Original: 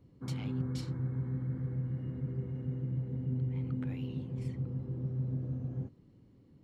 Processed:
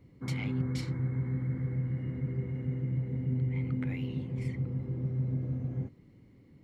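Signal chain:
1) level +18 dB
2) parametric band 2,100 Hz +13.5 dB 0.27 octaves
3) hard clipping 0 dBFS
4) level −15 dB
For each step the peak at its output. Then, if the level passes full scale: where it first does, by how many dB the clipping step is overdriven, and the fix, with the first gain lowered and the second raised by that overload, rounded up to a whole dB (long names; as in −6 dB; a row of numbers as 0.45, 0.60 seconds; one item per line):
−4.5, −4.5, −4.5, −19.5 dBFS
no step passes full scale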